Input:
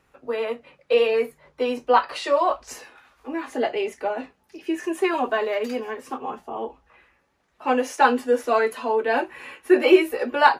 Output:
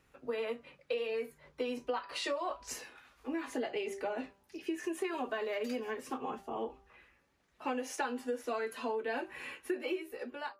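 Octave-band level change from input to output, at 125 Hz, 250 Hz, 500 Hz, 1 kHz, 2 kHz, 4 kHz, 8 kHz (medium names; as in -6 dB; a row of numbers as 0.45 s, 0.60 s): no reading, -13.5 dB, -15.0 dB, -17.5 dB, -14.5 dB, -11.5 dB, -6.0 dB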